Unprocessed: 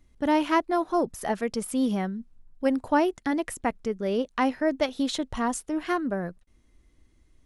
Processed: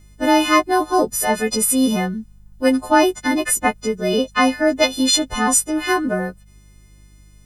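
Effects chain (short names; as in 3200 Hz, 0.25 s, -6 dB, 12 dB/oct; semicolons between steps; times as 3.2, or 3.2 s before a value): frequency quantiser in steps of 3 st; buzz 50 Hz, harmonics 4, -56 dBFS -7 dB/oct; gain +8 dB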